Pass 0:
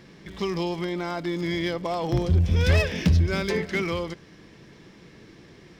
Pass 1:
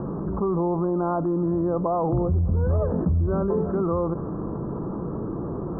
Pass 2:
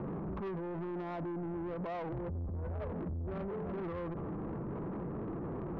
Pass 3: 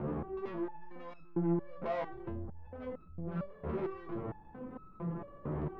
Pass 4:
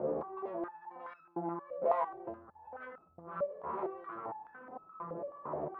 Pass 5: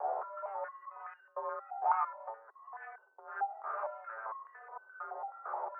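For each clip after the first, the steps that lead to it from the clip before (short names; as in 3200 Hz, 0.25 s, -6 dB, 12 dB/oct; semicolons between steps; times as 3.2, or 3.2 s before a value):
steep low-pass 1300 Hz 72 dB/oct; fast leveller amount 70%; gain -3.5 dB
limiter -21 dBFS, peak gain reduction 8 dB; soft clip -30.5 dBFS, distortion -10 dB; gain -5 dB
stepped resonator 4.4 Hz 75–1300 Hz; gain +11.5 dB
stepped band-pass 4.7 Hz 560–1500 Hz; gain +12 dB
mistuned SSB +220 Hz 150–2700 Hz; three-band isolator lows -13 dB, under 550 Hz, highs -19 dB, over 2100 Hz; gain +1.5 dB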